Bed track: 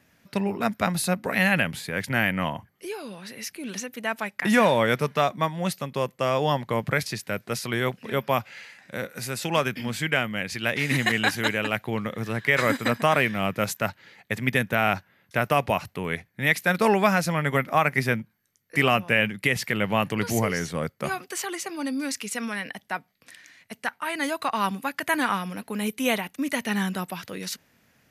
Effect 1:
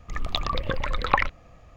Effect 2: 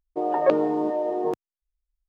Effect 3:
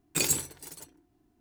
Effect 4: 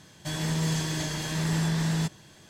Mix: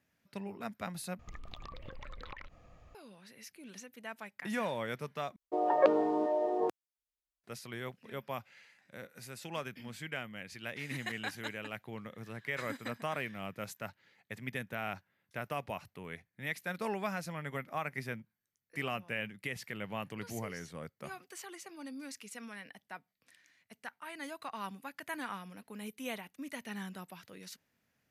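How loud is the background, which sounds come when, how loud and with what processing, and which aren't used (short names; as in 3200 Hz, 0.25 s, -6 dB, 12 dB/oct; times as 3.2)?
bed track -16 dB
1.19 replace with 1 -7.5 dB + compressor 16:1, threshold -34 dBFS
5.36 replace with 2 -3.5 dB + HPF 400 Hz 6 dB/oct
not used: 3, 4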